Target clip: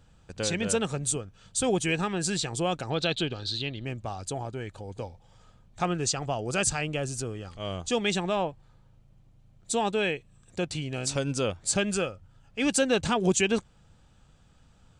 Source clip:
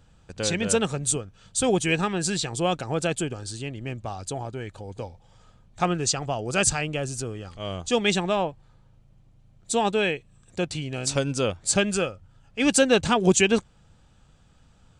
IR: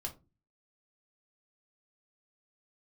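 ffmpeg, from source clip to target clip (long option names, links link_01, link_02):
-filter_complex "[0:a]asplit=2[link_01][link_02];[link_02]alimiter=limit=-17dB:level=0:latency=1:release=117,volume=0.5dB[link_03];[link_01][link_03]amix=inputs=2:normalize=0,asettb=1/sr,asplit=3[link_04][link_05][link_06];[link_04]atrim=end=2.904[link_07];[link_05]atrim=start=2.9:end=3.85,asetpts=PTS-STARTPTS,afade=type=in:duration=0.004:curve=qsin,afade=type=out:start_time=0.946:duration=0.004:curve=qsin,lowpass=frequency=3900:width_type=q:width=9.2[link_08];[link_06]atrim=start=3.846[link_09];[link_07][link_08]acrossfade=duration=0.004:curve1=hsin:curve2=qsin[link_10];[link_10][link_09]acrossfade=duration=0.004:curve1=qsin:curve2=hsin,volume=-8dB"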